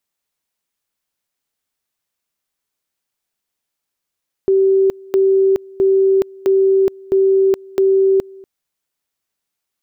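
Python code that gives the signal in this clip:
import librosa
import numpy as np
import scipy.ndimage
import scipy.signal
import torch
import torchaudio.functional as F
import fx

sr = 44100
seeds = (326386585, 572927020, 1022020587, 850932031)

y = fx.two_level_tone(sr, hz=386.0, level_db=-9.5, drop_db=25.0, high_s=0.42, low_s=0.24, rounds=6)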